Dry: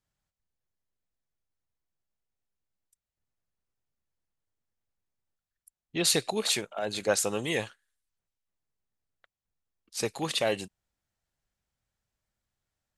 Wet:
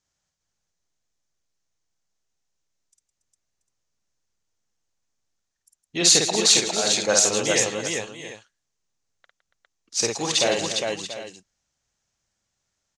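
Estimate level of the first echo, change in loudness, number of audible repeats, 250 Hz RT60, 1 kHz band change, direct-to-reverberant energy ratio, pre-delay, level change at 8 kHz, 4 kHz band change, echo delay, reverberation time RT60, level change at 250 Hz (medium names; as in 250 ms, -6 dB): -3.0 dB, +9.0 dB, 6, no reverb, +6.5 dB, no reverb, no reverb, +13.0 dB, +10.5 dB, 52 ms, no reverb, +5.5 dB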